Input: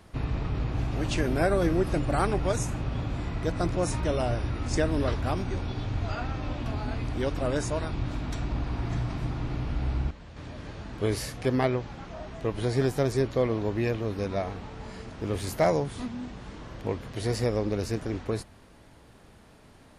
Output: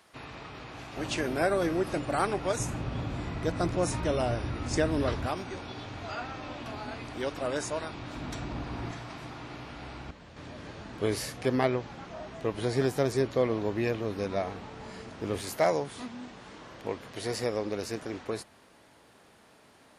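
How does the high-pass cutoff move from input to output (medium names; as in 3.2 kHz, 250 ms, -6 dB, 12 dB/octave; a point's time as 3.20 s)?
high-pass 6 dB/octave
1 kHz
from 0.97 s 340 Hz
from 2.60 s 110 Hz
from 5.27 s 460 Hz
from 8.16 s 190 Hz
from 8.91 s 660 Hz
from 10.09 s 180 Hz
from 15.41 s 420 Hz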